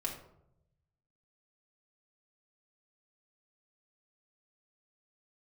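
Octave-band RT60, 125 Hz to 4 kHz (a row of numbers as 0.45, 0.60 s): 1.5, 1.0, 0.90, 0.70, 0.50, 0.35 s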